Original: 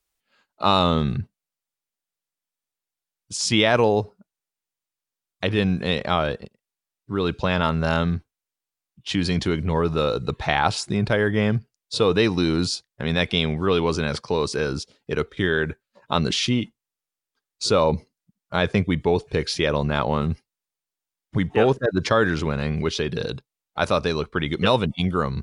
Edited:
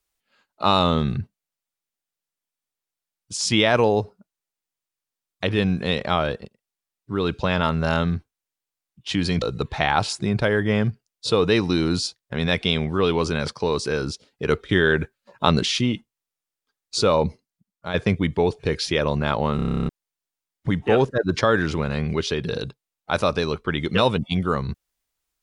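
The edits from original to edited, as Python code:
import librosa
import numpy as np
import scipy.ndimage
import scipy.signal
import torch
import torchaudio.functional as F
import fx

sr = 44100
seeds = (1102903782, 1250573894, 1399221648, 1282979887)

y = fx.edit(x, sr, fx.cut(start_s=9.42, length_s=0.68),
    fx.clip_gain(start_s=15.15, length_s=1.12, db=3.5),
    fx.fade_out_to(start_s=17.91, length_s=0.71, floor_db=-8.5),
    fx.stutter_over(start_s=20.24, slice_s=0.03, count=11), tone=tone)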